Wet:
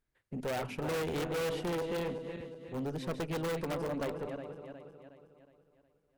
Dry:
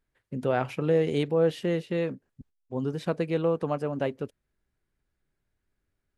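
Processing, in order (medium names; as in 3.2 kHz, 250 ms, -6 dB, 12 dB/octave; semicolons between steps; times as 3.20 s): backward echo that repeats 182 ms, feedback 66%, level -9 dB; in parallel at -3 dB: integer overflow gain 21.5 dB; on the sum: valve stage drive 22 dB, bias 0.45; trim -7 dB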